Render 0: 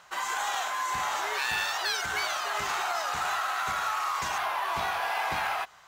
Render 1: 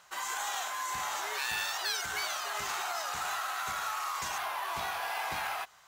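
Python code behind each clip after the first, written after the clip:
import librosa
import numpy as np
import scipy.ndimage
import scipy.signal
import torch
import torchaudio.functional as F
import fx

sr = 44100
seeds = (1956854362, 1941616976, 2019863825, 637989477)

y = fx.high_shelf(x, sr, hz=5300.0, db=9.0)
y = y * librosa.db_to_amplitude(-6.0)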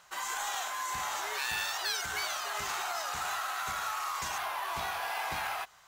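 y = fx.low_shelf(x, sr, hz=86.0, db=6.0)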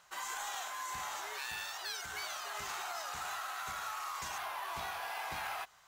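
y = fx.rider(x, sr, range_db=10, speed_s=0.5)
y = y * librosa.db_to_amplitude(-6.0)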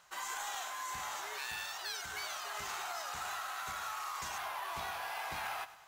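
y = fx.echo_feedback(x, sr, ms=102, feedback_pct=54, wet_db=-16)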